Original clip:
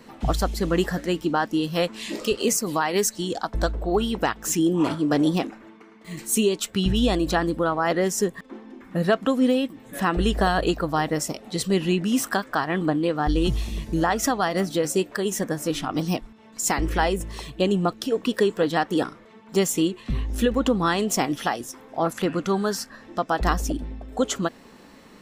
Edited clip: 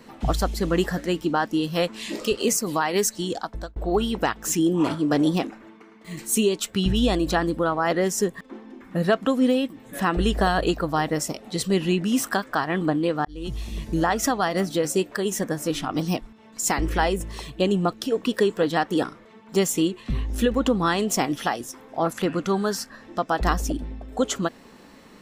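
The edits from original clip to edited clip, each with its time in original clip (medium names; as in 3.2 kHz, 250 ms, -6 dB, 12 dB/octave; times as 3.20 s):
3.32–3.76 s: fade out linear
13.25–13.86 s: fade in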